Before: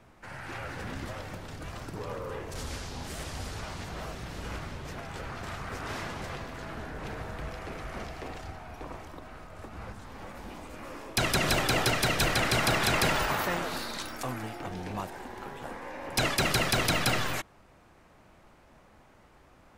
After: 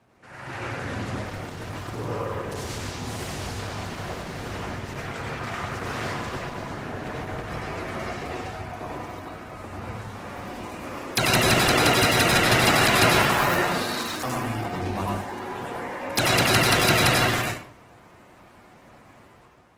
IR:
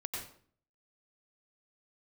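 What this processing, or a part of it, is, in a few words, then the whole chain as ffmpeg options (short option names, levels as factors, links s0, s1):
far-field microphone of a smart speaker: -filter_complex "[0:a]asplit=3[s0][s1][s2];[s0]afade=t=out:st=4.83:d=0.02[s3];[s1]equalizer=f=2100:t=o:w=0.96:g=3,afade=t=in:st=4.83:d=0.02,afade=t=out:st=5.58:d=0.02[s4];[s2]afade=t=in:st=5.58:d=0.02[s5];[s3][s4][s5]amix=inputs=3:normalize=0[s6];[1:a]atrim=start_sample=2205[s7];[s6][s7]afir=irnorm=-1:irlink=0,highpass=94,dynaudnorm=f=120:g=7:m=2.24" -ar 48000 -c:a libopus -b:a 16k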